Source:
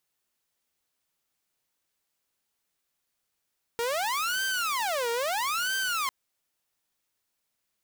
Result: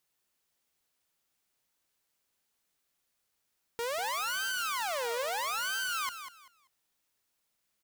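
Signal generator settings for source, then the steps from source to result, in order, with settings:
siren wail 465–1,560 Hz 0.76 per second saw −24 dBFS 2.30 s
brickwall limiter −29 dBFS
on a send: repeating echo 194 ms, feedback 24%, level −10 dB

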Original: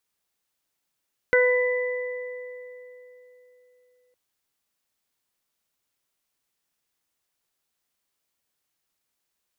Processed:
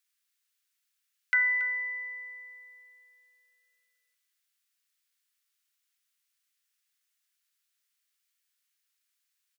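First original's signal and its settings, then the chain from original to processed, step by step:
harmonic partials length 2.81 s, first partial 498 Hz, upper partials −16/−4/−3 dB, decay 3.53 s, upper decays 2.34/0.37/2.75 s, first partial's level −16.5 dB
inverse Chebyshev high-pass filter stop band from 240 Hz, stop band 80 dB
single-tap delay 279 ms −15 dB

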